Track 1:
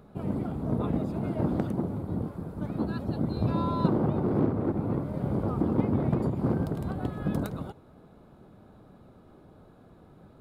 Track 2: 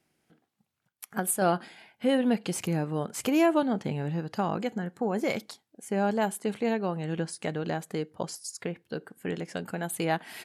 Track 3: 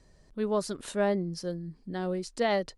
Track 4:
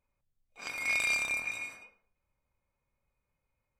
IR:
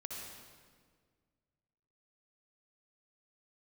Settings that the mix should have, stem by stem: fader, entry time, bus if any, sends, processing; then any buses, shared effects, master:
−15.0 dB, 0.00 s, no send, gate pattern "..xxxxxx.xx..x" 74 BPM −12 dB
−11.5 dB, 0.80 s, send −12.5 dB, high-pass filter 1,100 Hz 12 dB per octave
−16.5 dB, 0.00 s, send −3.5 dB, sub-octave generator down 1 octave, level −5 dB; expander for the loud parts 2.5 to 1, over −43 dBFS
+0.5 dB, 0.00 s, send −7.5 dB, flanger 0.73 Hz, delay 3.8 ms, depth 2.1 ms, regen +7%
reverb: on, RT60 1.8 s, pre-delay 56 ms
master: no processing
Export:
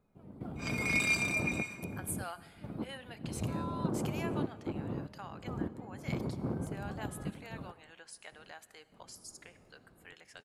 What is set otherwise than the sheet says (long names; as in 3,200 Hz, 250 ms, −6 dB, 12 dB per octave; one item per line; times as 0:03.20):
stem 1 −15.0 dB → −9.0 dB
stem 3: muted